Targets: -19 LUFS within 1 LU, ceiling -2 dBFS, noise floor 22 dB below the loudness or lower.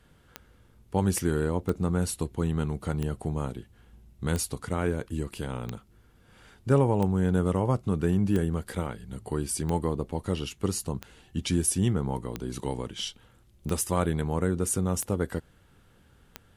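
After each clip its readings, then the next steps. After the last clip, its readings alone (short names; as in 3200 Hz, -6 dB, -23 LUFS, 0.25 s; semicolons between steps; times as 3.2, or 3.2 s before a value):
clicks 13; loudness -29.0 LUFS; peak -11.0 dBFS; loudness target -19.0 LUFS
-> de-click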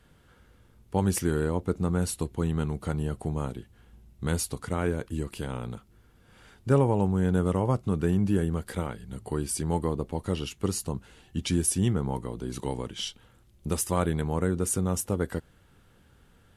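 clicks 0; loudness -29.0 LUFS; peak -11.0 dBFS; loudness target -19.0 LUFS
-> gain +10 dB; limiter -2 dBFS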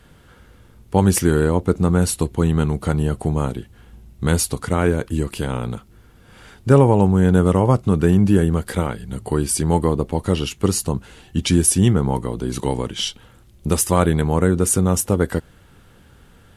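loudness -19.0 LUFS; peak -2.0 dBFS; noise floor -50 dBFS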